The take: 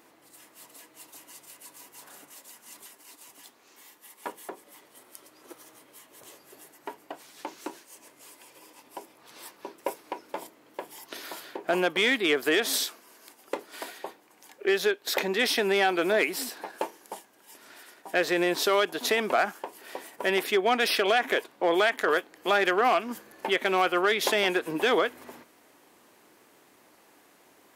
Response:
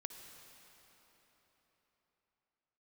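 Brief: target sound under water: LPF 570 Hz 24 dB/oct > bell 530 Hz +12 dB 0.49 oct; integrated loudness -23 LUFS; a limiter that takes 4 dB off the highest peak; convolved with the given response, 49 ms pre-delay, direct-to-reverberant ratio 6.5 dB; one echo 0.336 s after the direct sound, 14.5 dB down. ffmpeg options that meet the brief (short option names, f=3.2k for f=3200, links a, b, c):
-filter_complex "[0:a]alimiter=limit=-16.5dB:level=0:latency=1,aecho=1:1:336:0.188,asplit=2[a][b];[1:a]atrim=start_sample=2205,adelay=49[c];[b][c]afir=irnorm=-1:irlink=0,volume=-3.5dB[d];[a][d]amix=inputs=2:normalize=0,lowpass=f=570:w=0.5412,lowpass=f=570:w=1.3066,equalizer=f=530:t=o:w=0.49:g=12,volume=3dB"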